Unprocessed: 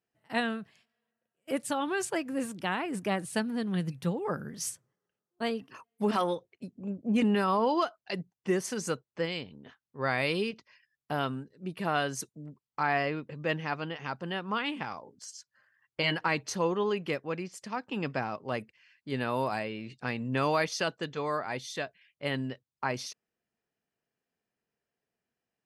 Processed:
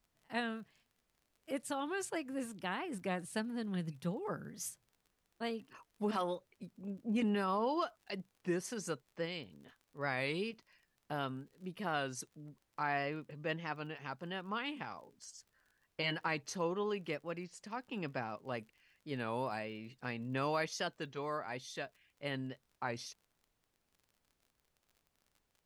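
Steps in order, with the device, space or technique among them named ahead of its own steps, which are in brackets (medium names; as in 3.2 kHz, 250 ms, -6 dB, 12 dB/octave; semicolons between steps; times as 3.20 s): warped LP (warped record 33 1/3 rpm, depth 100 cents; crackle 38 per s -47 dBFS; pink noise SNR 41 dB); trim -7.5 dB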